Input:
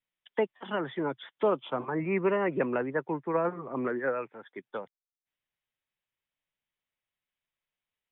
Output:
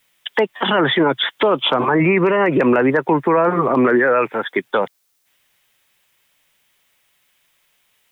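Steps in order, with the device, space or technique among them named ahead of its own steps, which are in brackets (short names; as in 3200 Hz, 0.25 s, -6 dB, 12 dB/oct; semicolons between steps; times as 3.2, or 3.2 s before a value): tilt +1.5 dB/oct; loud club master (compressor 2.5:1, threshold -31 dBFS, peak gain reduction 6.5 dB; hard clip -23 dBFS, distortion -34 dB; maximiser +32 dB); gain -6.5 dB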